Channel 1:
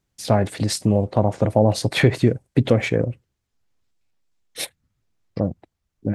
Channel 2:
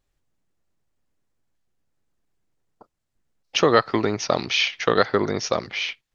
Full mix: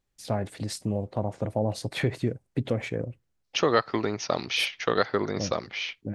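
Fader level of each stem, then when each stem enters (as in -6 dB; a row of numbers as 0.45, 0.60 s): -10.5, -5.5 dB; 0.00, 0.00 s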